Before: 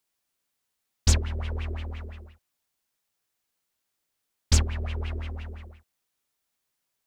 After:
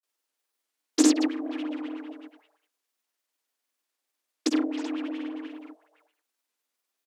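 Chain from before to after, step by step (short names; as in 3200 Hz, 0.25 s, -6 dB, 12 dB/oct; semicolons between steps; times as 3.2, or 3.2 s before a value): speakerphone echo 0.31 s, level -11 dB; grains; frequency shift +230 Hz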